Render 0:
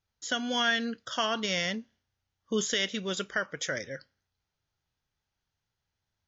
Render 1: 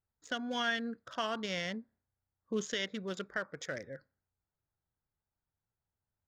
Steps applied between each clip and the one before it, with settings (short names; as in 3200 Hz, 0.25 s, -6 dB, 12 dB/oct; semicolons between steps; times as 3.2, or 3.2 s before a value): Wiener smoothing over 15 samples; high shelf 5100 Hz -6.5 dB; gain -5 dB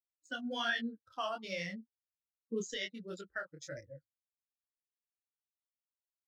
per-bin expansion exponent 2; detuned doubles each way 45 cents; gain +4.5 dB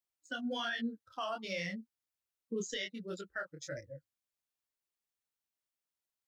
limiter -31 dBFS, peak gain reduction 8.5 dB; gain +2.5 dB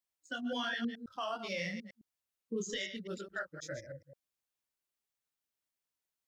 reverse delay 0.106 s, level -9 dB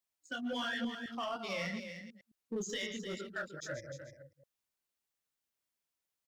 in parallel at -12 dB: wavefolder -37 dBFS; on the sum: echo 0.303 s -9 dB; gain -1.5 dB